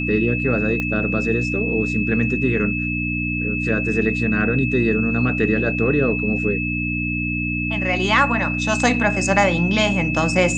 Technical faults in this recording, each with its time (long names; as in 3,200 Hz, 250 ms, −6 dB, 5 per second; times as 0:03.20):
mains hum 60 Hz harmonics 5 −25 dBFS
whistle 2,600 Hz −24 dBFS
0:00.80: click −12 dBFS